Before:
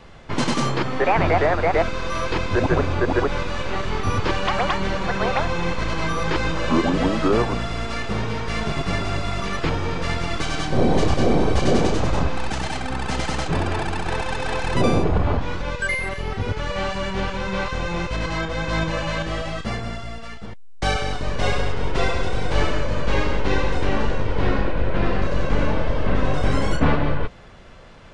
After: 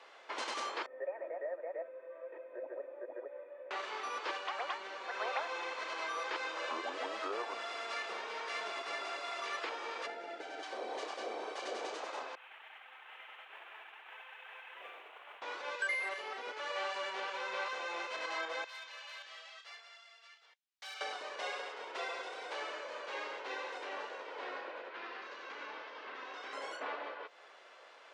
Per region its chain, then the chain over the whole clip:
0:00.86–0:03.71: formant resonators in series e + parametric band 2,500 Hz −14.5 dB 1.5 octaves + comb filter 3.2 ms, depth 48%
0:04.37–0:05.09: low-shelf EQ 130 Hz +10.5 dB + double-tracking delay 13 ms −13 dB
0:10.06–0:10.63: Butterworth band-reject 1,100 Hz, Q 3.3 + tilt shelving filter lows +9.5 dB, about 1,400 Hz
0:12.35–0:15.42: variable-slope delta modulation 16 kbit/s + first difference + noise that follows the level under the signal 27 dB
0:18.64–0:21.01: band-pass filter 360–4,400 Hz + first difference + hard clipping −35.5 dBFS
0:24.89–0:26.53: low-pass filter 6,400 Hz 24 dB per octave + parametric band 590 Hz −10 dB 0.81 octaves
whole clip: downward compressor 3 to 1, threshold −24 dBFS; Bessel high-pass filter 650 Hz, order 6; high-shelf EQ 7,800 Hz −9 dB; level −6 dB

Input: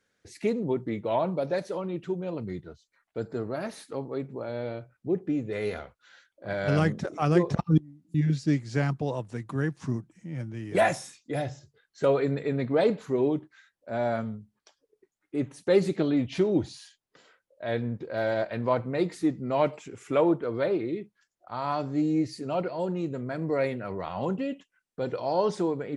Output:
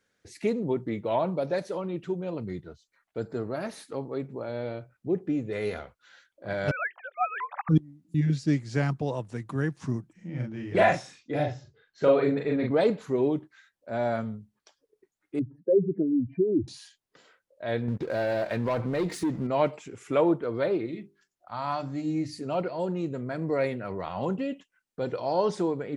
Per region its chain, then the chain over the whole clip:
0:06.71–0:07.69: three sine waves on the formant tracks + Butterworth high-pass 700 Hz 48 dB per octave
0:10.13–0:12.71: low-pass filter 4,500 Hz + double-tracking delay 40 ms −2 dB
0:15.39–0:16.68: expanding power law on the bin magnitudes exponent 2.4 + inverse Chebyshev low-pass filter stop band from 3,100 Hz
0:17.88–0:19.47: leveller curve on the samples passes 2 + downward compressor 3 to 1, threshold −26 dBFS
0:20.86–0:22.39: parametric band 420 Hz −11 dB 0.53 octaves + mains-hum notches 50/100/150/200/250/300/350/400/450/500 Hz
whole clip: no processing

